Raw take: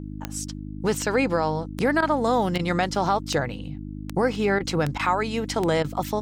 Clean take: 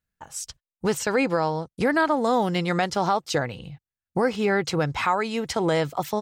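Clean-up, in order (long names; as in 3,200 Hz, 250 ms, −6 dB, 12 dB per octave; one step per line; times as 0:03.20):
click removal
hum removal 50.9 Hz, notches 6
repair the gap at 0:02.01/0:02.58/0:04.59/0:04.98/0:05.83, 12 ms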